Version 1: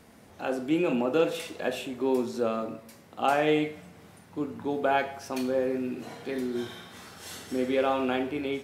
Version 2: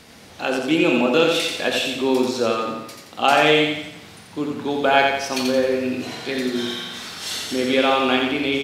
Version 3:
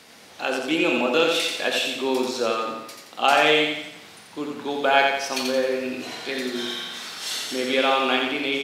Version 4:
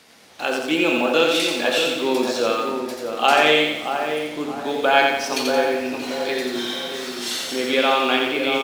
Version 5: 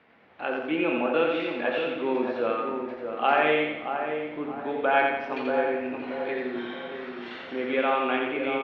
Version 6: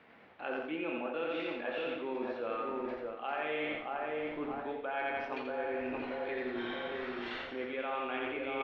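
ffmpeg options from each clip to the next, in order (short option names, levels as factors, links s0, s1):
-af "equalizer=f=4000:w=0.62:g=11,aecho=1:1:87|174|261|348|435|522:0.631|0.29|0.134|0.0614|0.0283|0.013,volume=1.88"
-af "highpass=f=410:p=1,volume=0.891"
-filter_complex "[0:a]asplit=2[s0][s1];[s1]adelay=628,lowpass=f=1200:p=1,volume=0.501,asplit=2[s2][s3];[s3]adelay=628,lowpass=f=1200:p=1,volume=0.46,asplit=2[s4][s5];[s5]adelay=628,lowpass=f=1200:p=1,volume=0.46,asplit=2[s6][s7];[s7]adelay=628,lowpass=f=1200:p=1,volume=0.46,asplit=2[s8][s9];[s9]adelay=628,lowpass=f=1200:p=1,volume=0.46,asplit=2[s10][s11];[s11]adelay=628,lowpass=f=1200:p=1,volume=0.46[s12];[s0][s2][s4][s6][s8][s10][s12]amix=inputs=7:normalize=0,asplit=2[s13][s14];[s14]acrusher=bits=5:mix=0:aa=0.5,volume=0.708[s15];[s13][s15]amix=inputs=2:normalize=0,volume=0.75"
-af "lowpass=f=2400:w=0.5412,lowpass=f=2400:w=1.3066,volume=0.531"
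-af "asubboost=boost=7.5:cutoff=61,areverse,acompressor=threshold=0.02:ratio=6,areverse"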